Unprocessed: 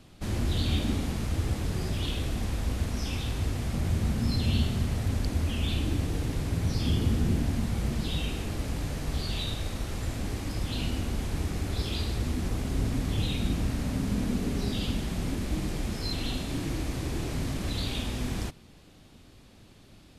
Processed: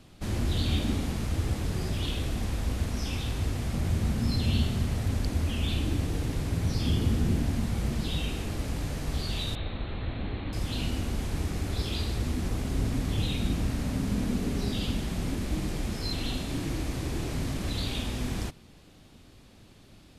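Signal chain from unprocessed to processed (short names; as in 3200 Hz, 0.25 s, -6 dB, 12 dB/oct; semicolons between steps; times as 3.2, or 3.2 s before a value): 9.55–10.53 Chebyshev low-pass 4200 Hz, order 8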